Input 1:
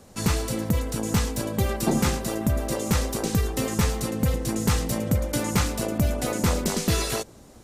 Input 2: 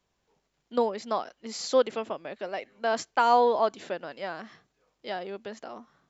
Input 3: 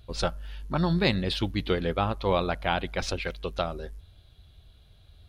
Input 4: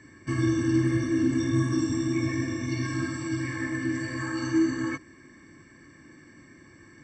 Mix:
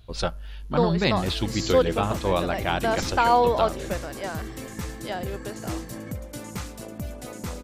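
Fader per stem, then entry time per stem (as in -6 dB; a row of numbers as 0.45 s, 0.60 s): -11.0 dB, +2.0 dB, +1.0 dB, -13.0 dB; 1.00 s, 0.00 s, 0.00 s, 1.15 s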